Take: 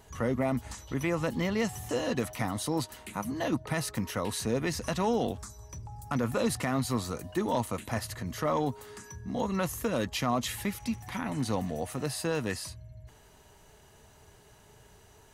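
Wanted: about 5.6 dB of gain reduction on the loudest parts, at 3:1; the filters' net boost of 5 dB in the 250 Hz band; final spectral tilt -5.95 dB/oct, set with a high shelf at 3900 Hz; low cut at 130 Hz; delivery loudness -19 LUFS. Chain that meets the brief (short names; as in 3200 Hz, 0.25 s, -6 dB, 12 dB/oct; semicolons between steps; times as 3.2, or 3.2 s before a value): HPF 130 Hz; bell 250 Hz +6.5 dB; high shelf 3900 Hz -8.5 dB; compressor 3:1, threshold -28 dBFS; gain +14.5 dB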